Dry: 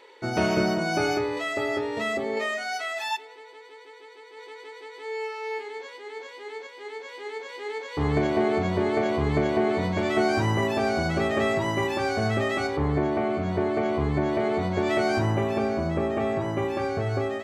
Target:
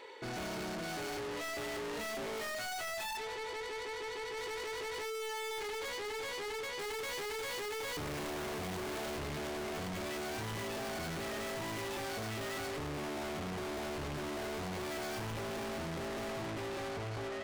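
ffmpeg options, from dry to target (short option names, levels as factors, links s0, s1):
-filter_complex "[0:a]dynaudnorm=f=360:g=9:m=4.73,asettb=1/sr,asplit=3[s0][s1][s2];[s0]atrim=end=6.794[s3];[s1]atrim=start=6.79:end=9.19,asetpts=PTS-STARTPTS,afade=t=in:d=0.004:c=qsin,afade=t=out:st=2.396:d=0.004:c=qsin,aeval=exprs='0.841*(cos(1*acos(clip(val(0)/0.841,-1,1)))-cos(1*PI/2))+0.335*(cos(4*acos(clip(val(0)/0.841,-1,1)))-cos(4*PI/2))+0.335*(cos(5*acos(clip(val(0)/0.841,-1,1)))-cos(5*PI/2))':c=same[s4];[s2]atrim=start=9.186[s5];[s3][s4]acrossfade=d=0.004:c1=hsin:c2=qsin[s6];[s6][s5]acrossfade=d=0.004:c1=qsin:c2=hsin,asoftclip=type=tanh:threshold=0.01,volume=1.12"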